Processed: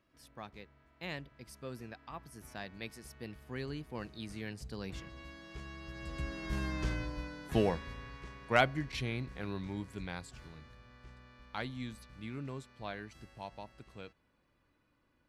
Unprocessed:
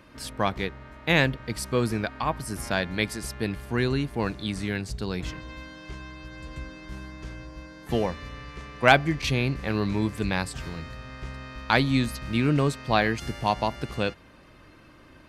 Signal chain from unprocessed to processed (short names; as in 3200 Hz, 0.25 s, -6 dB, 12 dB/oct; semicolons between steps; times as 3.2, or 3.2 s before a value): Doppler pass-by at 6.78, 20 m/s, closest 6.7 m; gain +4.5 dB